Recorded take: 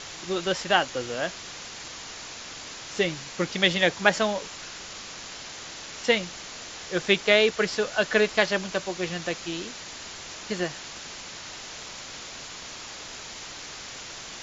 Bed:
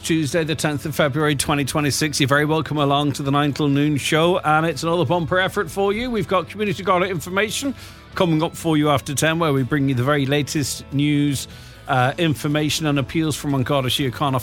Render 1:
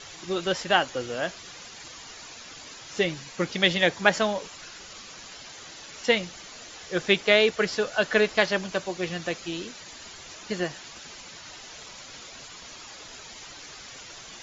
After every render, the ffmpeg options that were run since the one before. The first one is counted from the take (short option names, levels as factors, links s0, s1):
-af "afftdn=nr=9:nf=-41"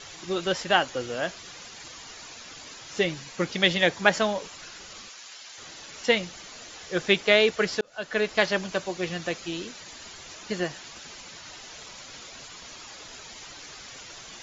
-filter_complex "[0:a]asplit=3[s0][s1][s2];[s0]afade=t=out:st=5.08:d=0.02[s3];[s1]highpass=f=1300:p=1,afade=t=in:st=5.08:d=0.02,afade=t=out:st=5.57:d=0.02[s4];[s2]afade=t=in:st=5.57:d=0.02[s5];[s3][s4][s5]amix=inputs=3:normalize=0,asplit=2[s6][s7];[s6]atrim=end=7.81,asetpts=PTS-STARTPTS,afade=t=out:st=7.806:d=0.004:c=hsin[s8];[s7]atrim=start=7.81,asetpts=PTS-STARTPTS,afade=t=in:d=0.63[s9];[s8][s9]concat=n=2:v=0:a=1"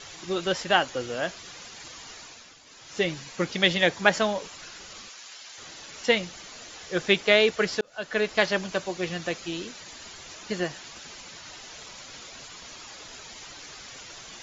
-filter_complex "[0:a]asplit=3[s0][s1][s2];[s0]atrim=end=2.59,asetpts=PTS-STARTPTS,afade=t=out:st=2.14:d=0.45:silence=0.316228[s3];[s1]atrim=start=2.59:end=2.64,asetpts=PTS-STARTPTS,volume=0.316[s4];[s2]atrim=start=2.64,asetpts=PTS-STARTPTS,afade=t=in:d=0.45:silence=0.316228[s5];[s3][s4][s5]concat=n=3:v=0:a=1"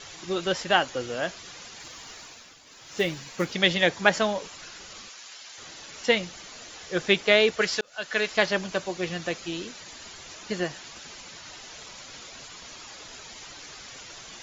-filter_complex "[0:a]asettb=1/sr,asplit=3[s0][s1][s2];[s0]atrim=end=1.804[s3];[s1]atrim=start=1.8:end=3.53,asetpts=PTS-STARTPTS,afade=t=in:d=0.004:c=qsin,afade=t=out:st=1.726:d=0.004:c=qsin,acrusher=bits=7:mode=log:mix=0:aa=0.000001[s4];[s2]atrim=start=3.526[s5];[s3][s4]acrossfade=d=0.004:c1=hsin:c2=qsin[s6];[s6][s5]acrossfade=d=0.004:c1=qsin:c2=hsin,asettb=1/sr,asplit=3[s7][s8][s9];[s7]atrim=end=7.614[s10];[s8]atrim=start=7.61:end=8.37,asetpts=PTS-STARTPTS,afade=t=in:d=0.004:c=qsin,afade=t=out:st=0.756:d=0.004:c=qsin,tiltshelf=f=970:g=-5[s11];[s9]atrim=start=8.366[s12];[s10][s11]acrossfade=d=0.004:c1=hsin:c2=qsin[s13];[s13][s12]acrossfade=d=0.004:c1=qsin:c2=hsin"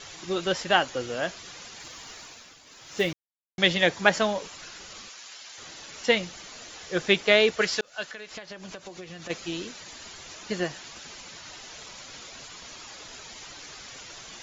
-filter_complex "[0:a]asplit=3[s0][s1][s2];[s0]afade=t=out:st=8.05:d=0.02[s3];[s1]acompressor=threshold=0.0158:ratio=16:attack=3.2:release=140:knee=1:detection=peak,afade=t=in:st=8.05:d=0.02,afade=t=out:st=9.29:d=0.02[s4];[s2]afade=t=in:st=9.29:d=0.02[s5];[s3][s4][s5]amix=inputs=3:normalize=0,asplit=3[s6][s7][s8];[s6]atrim=end=3.13,asetpts=PTS-STARTPTS,afade=t=out:st=3.126:d=0.004:c=hsin[s9];[s7]atrim=start=3.13:end=3.58,asetpts=PTS-STARTPTS,volume=0[s10];[s8]atrim=start=3.58,asetpts=PTS-STARTPTS,afade=t=in:d=0.004:c=hsin[s11];[s9][s10][s11]concat=n=3:v=0:a=1"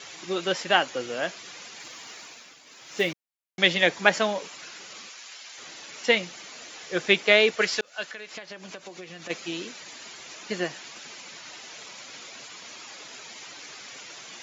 -af "highpass=180,equalizer=f=2300:w=2.6:g=3.5"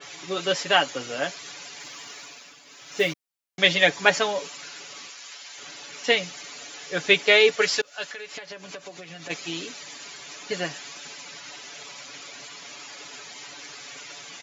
-af "aecho=1:1:7:0.65,adynamicequalizer=threshold=0.0178:dfrequency=3400:dqfactor=0.7:tfrequency=3400:tqfactor=0.7:attack=5:release=100:ratio=0.375:range=1.5:mode=boostabove:tftype=highshelf"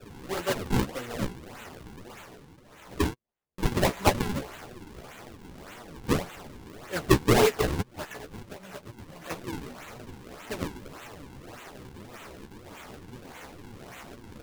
-af "acrusher=samples=41:mix=1:aa=0.000001:lfo=1:lforange=65.6:lforate=1.7,flanger=delay=8.1:depth=8.2:regen=19:speed=1.9:shape=sinusoidal"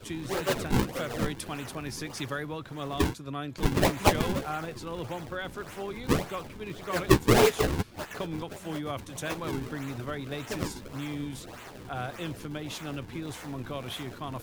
-filter_complex "[1:a]volume=0.133[s0];[0:a][s0]amix=inputs=2:normalize=0"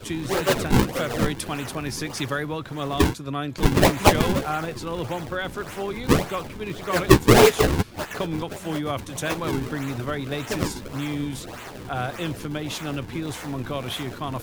-af "volume=2.24,alimiter=limit=0.891:level=0:latency=1"